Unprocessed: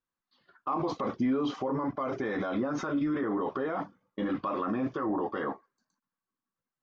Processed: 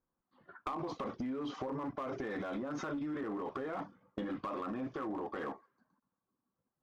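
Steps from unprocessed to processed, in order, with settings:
downward compressor 12 to 1, threshold −44 dBFS, peak gain reduction 19.5 dB
low-pass that shuts in the quiet parts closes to 830 Hz, open at −45.5 dBFS
asymmetric clip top −43 dBFS
level +8.5 dB

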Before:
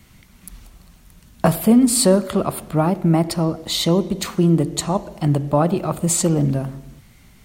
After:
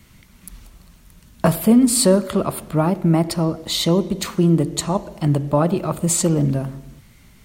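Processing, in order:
notch filter 750 Hz, Q 13

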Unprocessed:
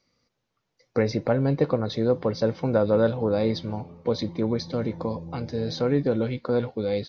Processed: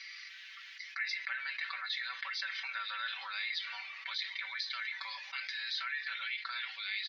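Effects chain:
elliptic high-pass filter 1,800 Hz, stop band 80 dB
high-frequency loss of the air 320 metres
comb filter 5.2 ms, depth 82%
envelope flattener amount 70%
level +1.5 dB

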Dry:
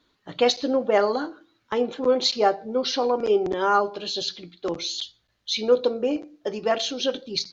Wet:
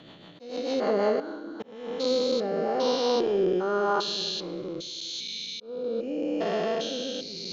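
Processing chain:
spectrum averaged block by block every 400 ms
rotating-speaker cabinet horn 6.7 Hz, later 0.85 Hz, at 0:00.73
on a send at −14 dB: convolution reverb RT60 1.4 s, pre-delay 6 ms
on the sum: volume swells 518 ms
parametric band 81 Hz −7 dB 0.77 octaves
level +4 dB

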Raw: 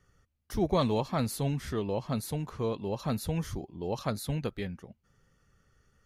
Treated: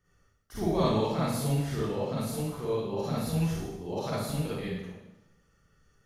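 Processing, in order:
four-comb reverb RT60 0.91 s, DRR −9 dB
level −8 dB

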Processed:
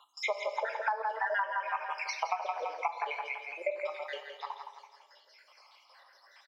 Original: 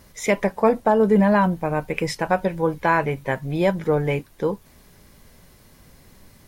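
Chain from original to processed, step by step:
time-frequency cells dropped at random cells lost 74%
high-frequency loss of the air 230 metres
noise gate with hold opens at −57 dBFS
mains hum 60 Hz, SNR 20 dB
Bessel high-pass filter 1,100 Hz, order 8
repeating echo 167 ms, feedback 43%, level −7 dB
on a send at −6.5 dB: convolution reverb, pre-delay 3 ms
on the sum: downward compressor 12 to 1, threshold −35 dBFS, peak gain reduction 14 dB
parametric band 5,100 Hz +9.5 dB 0.28 octaves
level +7 dB

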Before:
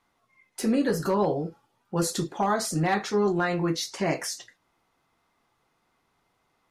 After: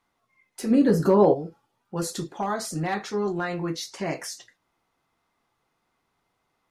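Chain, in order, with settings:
0:00.70–0:01.33: parametric band 130 Hz → 460 Hz +11.5 dB 3 octaves
level −3 dB

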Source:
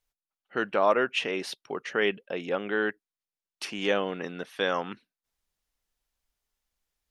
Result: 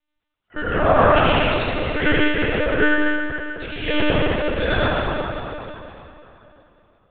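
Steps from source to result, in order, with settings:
convolution reverb RT60 3.1 s, pre-delay 67 ms, DRR −8.5 dB
one-pitch LPC vocoder at 8 kHz 300 Hz
level +1.5 dB

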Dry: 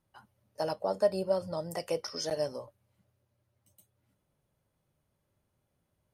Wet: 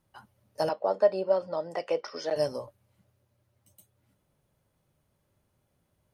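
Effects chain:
0:00.69–0:02.36: band-pass filter 320–3,100 Hz
level +4.5 dB

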